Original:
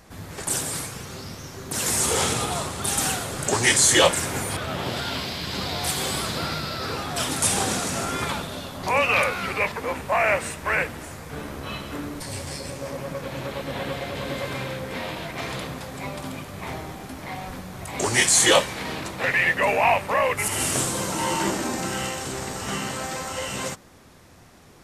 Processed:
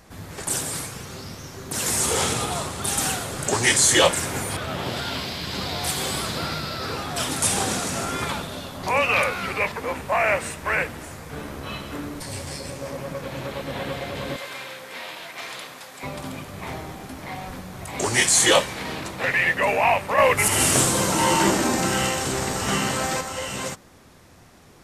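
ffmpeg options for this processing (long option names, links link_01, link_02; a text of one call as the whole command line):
ffmpeg -i in.wav -filter_complex "[0:a]asettb=1/sr,asplit=3[link_01][link_02][link_03];[link_01]atrim=end=14.364[link_04];[link_02]atrim=start=14.36:end=16.03,asetpts=PTS-STARTPTS,afade=type=in:duration=0.004:curve=qsin,afade=type=out:start_time=1.666:duration=0.004:curve=qsin,highpass=frequency=1200:poles=1[link_05];[link_03]atrim=start=16.026[link_06];[link_04][link_05]acrossfade=duration=0.004:curve1=hsin:curve2=qsin[link_07];[link_07][link_06]acrossfade=duration=0.004:curve1=qsin:curve2=hsin,asettb=1/sr,asplit=3[link_08][link_09][link_10];[link_08]atrim=end=20.184[link_11];[link_09]atrim=start=20.18:end=23.21,asetpts=PTS-STARTPTS,afade=type=in:duration=0.004:curve=qsin,afade=type=out:start_time=3.026:duration=0.004:curve=qsin,acontrast=38[link_12];[link_10]atrim=start=23.206[link_13];[link_11][link_12]acrossfade=duration=0.004:curve1=hsin:curve2=qsin[link_14];[link_14][link_13]acrossfade=duration=0.004:curve1=qsin:curve2=hsin" out.wav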